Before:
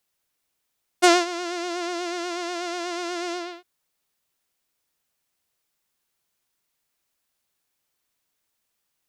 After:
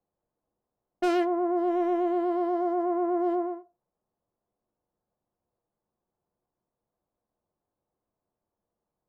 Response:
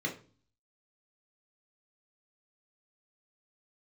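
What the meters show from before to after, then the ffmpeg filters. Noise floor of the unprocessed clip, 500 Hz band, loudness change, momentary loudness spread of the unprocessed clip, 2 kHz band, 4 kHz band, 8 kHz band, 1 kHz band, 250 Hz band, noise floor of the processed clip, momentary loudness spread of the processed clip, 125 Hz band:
−78 dBFS, +1.0 dB, −1.5 dB, 12 LU, −13.5 dB, below −15 dB, below −20 dB, −2.0 dB, +2.0 dB, below −85 dBFS, 5 LU, can't be measured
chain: -filter_complex "[0:a]lowpass=frequency=1000:width=0.5412,lowpass=frequency=1000:width=1.3066,asoftclip=type=hard:threshold=-26.5dB,asplit=2[link_01][link_02];[1:a]atrim=start_sample=2205,afade=type=out:start_time=0.36:duration=0.01,atrim=end_sample=16317,asetrate=70560,aresample=44100[link_03];[link_02][link_03]afir=irnorm=-1:irlink=0,volume=-7dB[link_04];[link_01][link_04]amix=inputs=2:normalize=0,volume=2dB"

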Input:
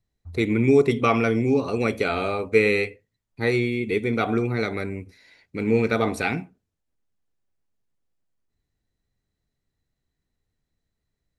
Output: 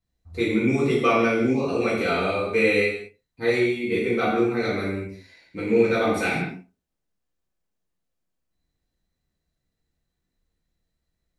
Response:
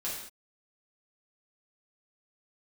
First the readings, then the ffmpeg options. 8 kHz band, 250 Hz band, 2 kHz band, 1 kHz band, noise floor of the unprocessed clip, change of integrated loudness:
+1.0 dB, 0.0 dB, +1.5 dB, +1.0 dB, −81 dBFS, 0.0 dB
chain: -filter_complex "[1:a]atrim=start_sample=2205[link_01];[0:a][link_01]afir=irnorm=-1:irlink=0,volume=-2dB"

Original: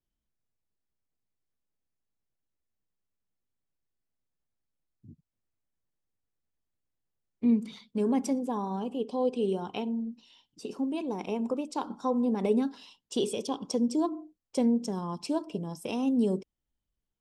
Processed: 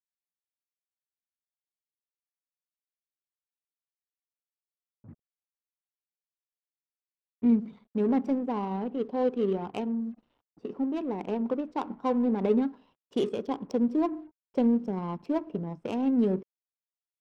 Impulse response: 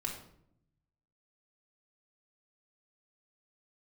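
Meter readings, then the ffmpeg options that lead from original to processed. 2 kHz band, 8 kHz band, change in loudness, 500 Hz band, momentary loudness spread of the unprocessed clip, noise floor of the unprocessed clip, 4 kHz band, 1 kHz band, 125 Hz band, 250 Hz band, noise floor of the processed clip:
0.0 dB, below −15 dB, +1.5 dB, +1.5 dB, 9 LU, below −85 dBFS, can't be measured, +1.0 dB, +1.5 dB, +1.5 dB, below −85 dBFS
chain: -af "acrusher=bits=8:mix=0:aa=0.5,adynamicequalizer=threshold=0.00178:dfrequency=6500:dqfactor=0.89:tfrequency=6500:tqfactor=0.89:attack=5:release=100:ratio=0.375:range=1.5:mode=cutabove:tftype=bell,adynamicsmooth=sensitivity=4:basefreq=830,volume=1.5dB"

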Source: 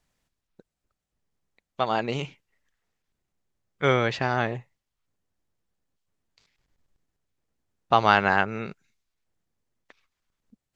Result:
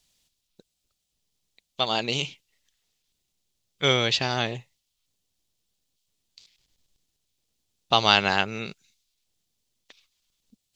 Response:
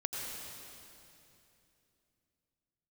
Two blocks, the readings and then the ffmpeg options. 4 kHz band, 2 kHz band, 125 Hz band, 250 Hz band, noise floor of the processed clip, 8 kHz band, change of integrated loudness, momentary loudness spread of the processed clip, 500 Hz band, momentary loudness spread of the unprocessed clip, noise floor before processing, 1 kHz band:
+11.5 dB, −1.0 dB, −1.5 dB, −1.5 dB, −79 dBFS, can't be measured, +0.5 dB, 16 LU, −2.0 dB, 17 LU, −85 dBFS, −3.0 dB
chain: -af "highshelf=frequency=2400:width_type=q:width=1.5:gain=12,volume=-1.5dB"

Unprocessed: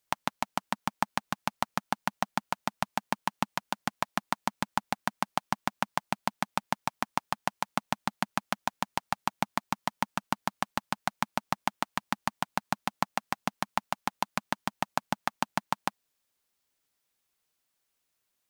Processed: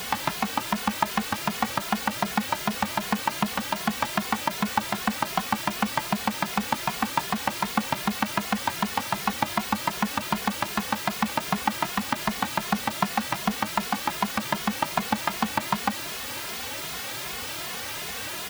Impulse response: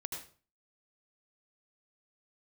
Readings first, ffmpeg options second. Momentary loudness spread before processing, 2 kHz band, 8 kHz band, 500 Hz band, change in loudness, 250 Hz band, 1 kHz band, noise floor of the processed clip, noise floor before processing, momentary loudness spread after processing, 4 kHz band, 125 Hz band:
3 LU, +6.5 dB, +9.5 dB, +6.0 dB, +6.0 dB, +9.0 dB, +4.5 dB, −34 dBFS, −80 dBFS, 5 LU, +8.5 dB, +6.5 dB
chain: -filter_complex "[0:a]aeval=exprs='val(0)+0.5*0.0596*sgn(val(0))':channel_layout=same,highpass=44,acrossover=split=4500[link_01][link_02];[link_02]acompressor=threshold=-40dB:ratio=4:attack=1:release=60[link_03];[link_01][link_03]amix=inputs=2:normalize=0,asplit=2[link_04][link_05];[link_05]adelay=2.4,afreqshift=2.6[link_06];[link_04][link_06]amix=inputs=2:normalize=1,volume=5.5dB"

